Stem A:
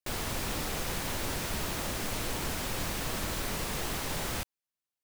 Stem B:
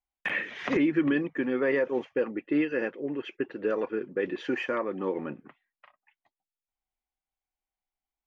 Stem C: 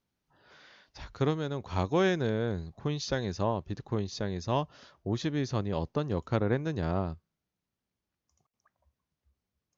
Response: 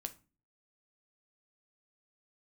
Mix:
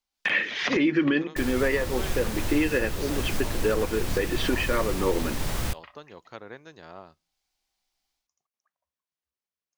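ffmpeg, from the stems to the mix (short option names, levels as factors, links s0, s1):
-filter_complex "[0:a]lowshelf=f=140:g=11,adelay=1300,volume=1.06,asplit=2[s0][s1];[s1]volume=0.119[s2];[1:a]equalizer=f=4700:w=0.96:g=12.5,dynaudnorm=f=120:g=3:m=2.82,volume=0.668,asplit=2[s3][s4];[s4]volume=0.596[s5];[2:a]highpass=f=1100:p=1,volume=0.501,asplit=3[s6][s7][s8];[s7]volume=0.168[s9];[s8]apad=whole_len=364659[s10];[s3][s10]sidechaincompress=threshold=0.00631:ratio=8:attack=16:release=658[s11];[3:a]atrim=start_sample=2205[s12];[s2][s5][s9]amix=inputs=3:normalize=0[s13];[s13][s12]afir=irnorm=-1:irlink=0[s14];[s0][s11][s6][s14]amix=inputs=4:normalize=0,alimiter=limit=0.211:level=0:latency=1:release=415"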